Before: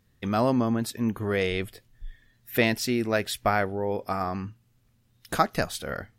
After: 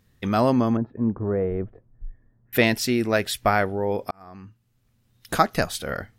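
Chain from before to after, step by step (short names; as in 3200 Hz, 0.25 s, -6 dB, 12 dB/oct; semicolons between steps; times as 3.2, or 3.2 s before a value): 0.77–2.53 Bessel low-pass 780 Hz, order 4; 4.11–5.37 fade in; gain +3.5 dB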